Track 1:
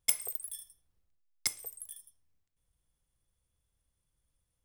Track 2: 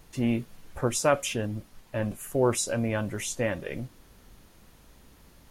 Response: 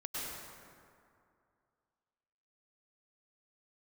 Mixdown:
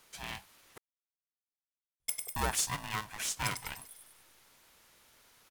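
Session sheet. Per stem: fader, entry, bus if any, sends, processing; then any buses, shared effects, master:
-7.5 dB, 2.00 s, no send, echo send -5.5 dB, none
-1.5 dB, 0.00 s, muted 0.78–2.36 s, no send, no echo send, Bessel high-pass 730 Hz, order 4; polarity switched at an audio rate 430 Hz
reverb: none
echo: feedback delay 99 ms, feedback 51%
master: none

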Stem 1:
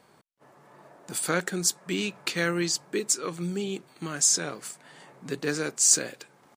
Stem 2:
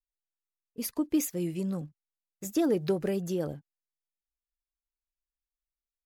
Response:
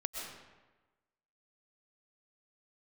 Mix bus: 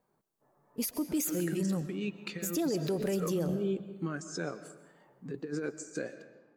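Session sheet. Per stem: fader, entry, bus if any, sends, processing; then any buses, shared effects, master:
-10.0 dB, 0.00 s, send -9.5 dB, treble shelf 2.6 kHz -6 dB; compressor with a negative ratio -31 dBFS, ratio -0.5; spectral contrast expander 1.5:1
-0.5 dB, 0.00 s, send -9.5 dB, treble shelf 5.6 kHz +7 dB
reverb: on, RT60 1.2 s, pre-delay 85 ms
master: peak limiter -23.5 dBFS, peak gain reduction 10.5 dB

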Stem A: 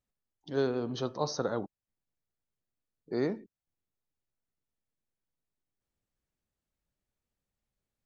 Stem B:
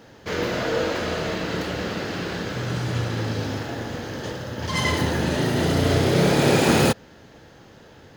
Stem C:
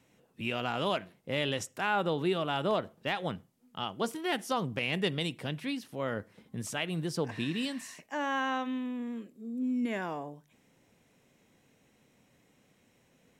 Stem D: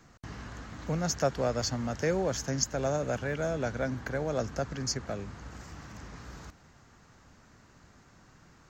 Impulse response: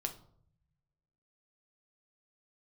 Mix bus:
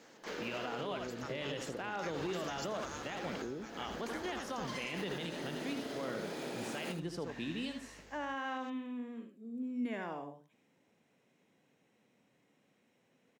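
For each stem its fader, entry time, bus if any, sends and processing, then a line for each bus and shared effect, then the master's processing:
+2.5 dB, 0.30 s, bus A, no send, no echo send, inverse Chebyshev low-pass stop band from 1.1 kHz, stop band 40 dB; hum 50 Hz, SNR 25 dB
-11.0 dB, 0.00 s, bus A, no send, echo send -20.5 dB, high-pass 200 Hz 24 dB/octave
-5.5 dB, 0.00 s, no bus, no send, echo send -7.5 dB, high-pass 160 Hz 12 dB/octave; treble shelf 6.5 kHz -10.5 dB
+0.5 dB, 0.00 s, bus A, no send, no echo send, spectral gate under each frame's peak -15 dB weak
bus A: 0.0 dB, compression 8:1, threshold -39 dBFS, peak gain reduction 16.5 dB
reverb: none
echo: delay 77 ms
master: peak limiter -29 dBFS, peak gain reduction 8 dB

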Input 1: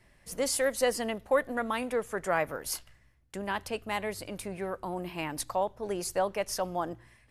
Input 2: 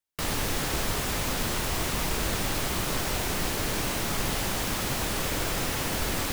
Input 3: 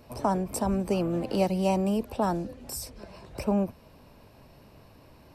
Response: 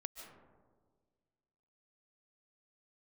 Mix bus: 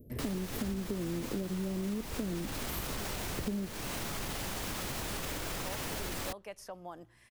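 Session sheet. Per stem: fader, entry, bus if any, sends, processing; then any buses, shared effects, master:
-14.0 dB, 0.10 s, no send, three bands compressed up and down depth 100%; auto duck -17 dB, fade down 0.35 s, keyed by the third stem
-4.0 dB, 0.00 s, no send, peak limiter -23 dBFS, peak gain reduction 7.5 dB
+2.0 dB, 0.00 s, no send, inverse Chebyshev band-stop 990–6400 Hz, stop band 50 dB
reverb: none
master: compression 10:1, threshold -32 dBFS, peak gain reduction 12 dB

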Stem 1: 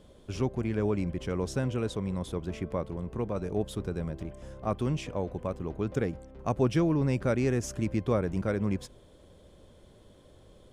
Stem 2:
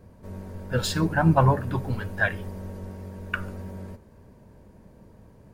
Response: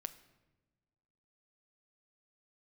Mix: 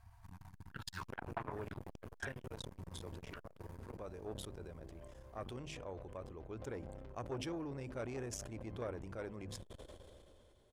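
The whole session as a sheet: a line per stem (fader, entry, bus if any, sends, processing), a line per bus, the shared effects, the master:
-12.0 dB, 0.70 s, no send, de-hum 51.2 Hz, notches 5; decay stretcher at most 24 dB/s
-5.5 dB, 0.00 s, no send, FFT band-reject 130–660 Hz; compression 6:1, threshold -29 dBFS, peak gain reduction 13 dB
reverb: none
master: peaking EQ 180 Hz -9.5 dB 1 oct; transformer saturation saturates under 1.3 kHz

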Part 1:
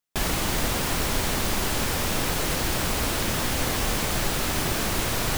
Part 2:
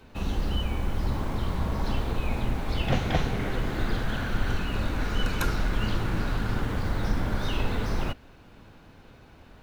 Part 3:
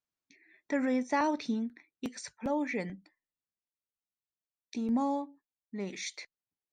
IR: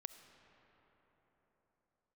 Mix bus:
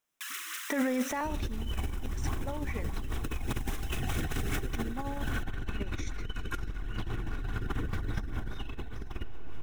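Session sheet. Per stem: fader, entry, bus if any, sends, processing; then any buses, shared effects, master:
-5.5 dB, 0.05 s, bus A, send -8 dB, steep high-pass 1.1 kHz 72 dB/octave; auto duck -14 dB, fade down 0.20 s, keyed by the third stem
+2.0 dB, 1.10 s, bus A, send -7.5 dB, comb 2.7 ms, depth 41%
+0.5 dB, 0.00 s, no bus, send -4 dB, peaking EQ 72 Hz -9 dB 3 oct
bus A: 0.0 dB, rotary cabinet horn 5 Hz; peak limiter -21.5 dBFS, peak gain reduction 11 dB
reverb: on, pre-delay 25 ms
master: peaking EQ 4.5 kHz -12 dB 0.23 oct; compressor with a negative ratio -32 dBFS, ratio -1

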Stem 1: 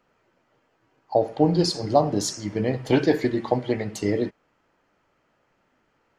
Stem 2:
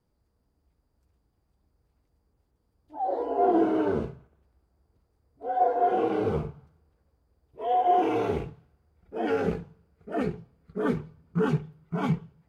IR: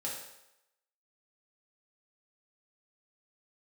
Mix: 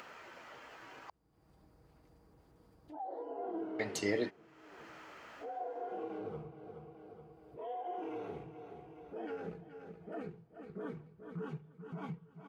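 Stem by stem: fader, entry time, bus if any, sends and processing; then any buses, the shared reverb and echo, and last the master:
-5.5 dB, 0.00 s, muted 1.10–3.79 s, no send, no echo send, tilt shelf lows -7.5 dB, about 640 Hz
-19.0 dB, 0.00 s, no send, echo send -18 dB, comb 6.3 ms, depth 33%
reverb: none
echo: feedback delay 424 ms, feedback 30%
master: upward compressor, threshold -35 dBFS; high-pass 130 Hz 6 dB/octave; treble shelf 3.7 kHz -7.5 dB

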